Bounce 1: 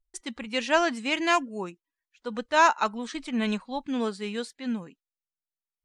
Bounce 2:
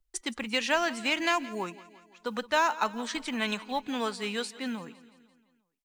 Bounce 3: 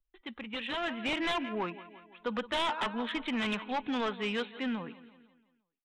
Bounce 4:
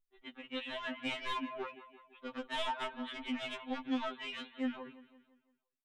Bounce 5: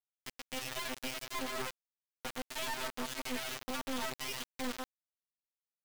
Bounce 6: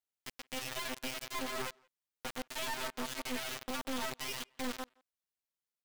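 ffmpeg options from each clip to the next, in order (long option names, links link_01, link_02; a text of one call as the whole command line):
ffmpeg -i in.wav -filter_complex "[0:a]acrossover=split=160|650[link_01][link_02][link_03];[link_01]acompressor=threshold=-56dB:ratio=4[link_04];[link_02]acompressor=threshold=-40dB:ratio=4[link_05];[link_03]acompressor=threshold=-29dB:ratio=4[link_06];[link_04][link_05][link_06]amix=inputs=3:normalize=0,acrusher=bits=8:mode=log:mix=0:aa=0.000001,aecho=1:1:170|340|510|680|850:0.119|0.0666|0.0373|0.0209|0.0117,volume=4dB" out.wav
ffmpeg -i in.wav -af "aresample=8000,aeval=exprs='0.0596*(abs(mod(val(0)/0.0596+3,4)-2)-1)':channel_layout=same,aresample=44100,dynaudnorm=framelen=250:gausssize=7:maxgain=9.5dB,asoftclip=type=tanh:threshold=-17.5dB,volume=-7.5dB" out.wav
ffmpeg -i in.wav -af "afftfilt=real='re*2.45*eq(mod(b,6),0)':imag='im*2.45*eq(mod(b,6),0)':win_size=2048:overlap=0.75,volume=-3.5dB" out.wav
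ffmpeg -i in.wav -af "alimiter=level_in=12dB:limit=-24dB:level=0:latency=1:release=11,volume=-12dB,acrusher=bits=4:dc=4:mix=0:aa=0.000001,volume=6dB" out.wav
ffmpeg -i in.wav -filter_complex "[0:a]asplit=2[link_01][link_02];[link_02]adelay=170,highpass=300,lowpass=3400,asoftclip=type=hard:threshold=-38dB,volume=-25dB[link_03];[link_01][link_03]amix=inputs=2:normalize=0" out.wav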